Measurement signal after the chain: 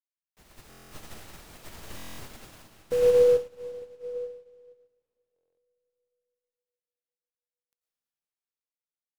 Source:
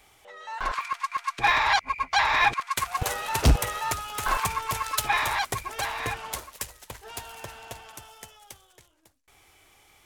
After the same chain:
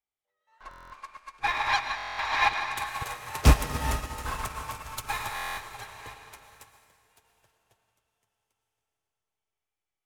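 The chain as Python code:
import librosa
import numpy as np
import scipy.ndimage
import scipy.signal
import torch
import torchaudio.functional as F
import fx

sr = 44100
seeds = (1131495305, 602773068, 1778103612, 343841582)

y = fx.rev_freeverb(x, sr, rt60_s=4.9, hf_ratio=0.95, predelay_ms=65, drr_db=-1.5)
y = fx.buffer_glitch(y, sr, at_s=(0.69, 1.96, 5.34), block=1024, repeats=9)
y = fx.upward_expand(y, sr, threshold_db=-41.0, expansion=2.5)
y = y * 10.0 ** (2.5 / 20.0)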